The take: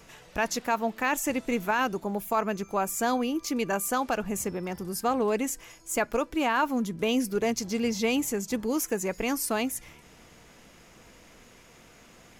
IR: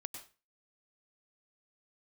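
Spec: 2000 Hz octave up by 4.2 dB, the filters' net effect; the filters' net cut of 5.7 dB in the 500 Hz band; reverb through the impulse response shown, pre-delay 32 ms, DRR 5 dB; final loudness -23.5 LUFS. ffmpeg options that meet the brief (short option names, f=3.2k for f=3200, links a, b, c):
-filter_complex "[0:a]equalizer=f=500:t=o:g=-7.5,equalizer=f=2k:t=o:g=6,asplit=2[a][b];[1:a]atrim=start_sample=2205,adelay=32[c];[b][c]afir=irnorm=-1:irlink=0,volume=-2dB[d];[a][d]amix=inputs=2:normalize=0,volume=4dB"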